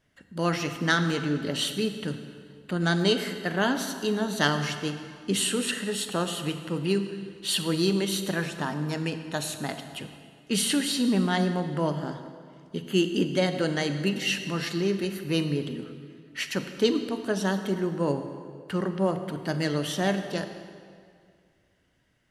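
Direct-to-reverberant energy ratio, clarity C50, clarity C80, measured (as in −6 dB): 8.0 dB, 8.5 dB, 9.5 dB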